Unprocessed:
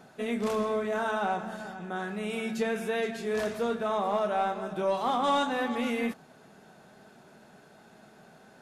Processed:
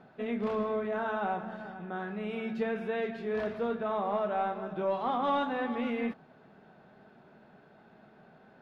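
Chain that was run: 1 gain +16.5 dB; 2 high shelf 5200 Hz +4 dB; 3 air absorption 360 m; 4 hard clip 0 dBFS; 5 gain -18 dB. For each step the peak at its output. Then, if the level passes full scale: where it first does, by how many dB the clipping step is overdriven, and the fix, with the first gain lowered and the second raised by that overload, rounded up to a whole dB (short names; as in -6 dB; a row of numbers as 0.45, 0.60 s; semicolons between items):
-0.5, -0.5, -2.0, -2.0, -20.0 dBFS; no overload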